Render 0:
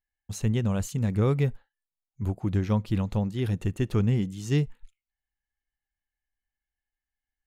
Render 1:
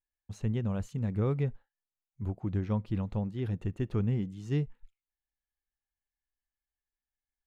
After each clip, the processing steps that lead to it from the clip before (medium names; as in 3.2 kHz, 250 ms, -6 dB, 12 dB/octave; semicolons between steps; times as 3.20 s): low-pass 1.9 kHz 6 dB/octave; trim -5.5 dB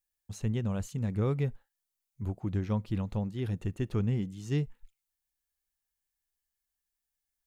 treble shelf 4.5 kHz +11 dB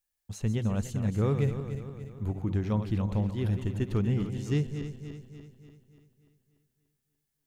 backward echo that repeats 146 ms, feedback 71%, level -9 dB; trim +2 dB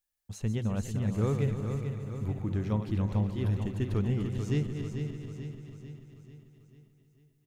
feedback delay 442 ms, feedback 52%, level -8 dB; trim -2 dB